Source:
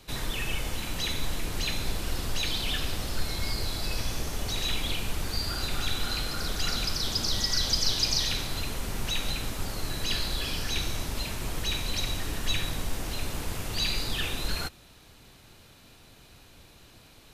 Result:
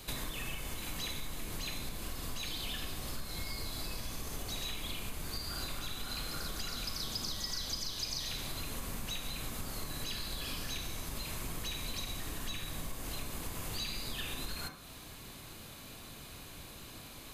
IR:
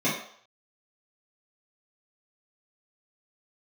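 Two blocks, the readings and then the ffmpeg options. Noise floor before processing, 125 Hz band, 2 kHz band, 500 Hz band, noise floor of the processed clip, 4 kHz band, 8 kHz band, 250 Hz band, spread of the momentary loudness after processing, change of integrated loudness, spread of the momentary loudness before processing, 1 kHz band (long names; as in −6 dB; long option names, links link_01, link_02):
−54 dBFS, −9.5 dB, −9.0 dB, −8.5 dB, −50 dBFS, −9.5 dB, −7.0 dB, −7.5 dB, 12 LU, −9.5 dB, 8 LU, −7.5 dB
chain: -filter_complex "[0:a]acompressor=threshold=-40dB:ratio=6,highshelf=frequency=7900:gain=9,bandreject=frequency=5600:width=14,asplit=2[link_01][link_02];[link_02]equalizer=frequency=1200:width_type=o:width=0.92:gain=10.5[link_03];[1:a]atrim=start_sample=2205,adelay=30[link_04];[link_03][link_04]afir=irnorm=-1:irlink=0,volume=-21.5dB[link_05];[link_01][link_05]amix=inputs=2:normalize=0,volume=2.5dB"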